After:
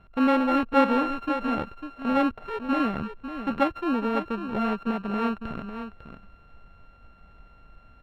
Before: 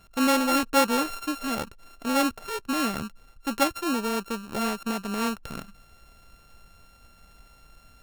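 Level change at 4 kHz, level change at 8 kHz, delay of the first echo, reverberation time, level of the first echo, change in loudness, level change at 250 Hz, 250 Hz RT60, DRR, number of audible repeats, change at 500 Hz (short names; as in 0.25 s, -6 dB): -9.0 dB, under -25 dB, 0.55 s, none, -9.5 dB, +0.5 dB, +2.5 dB, none, none, 1, +1.5 dB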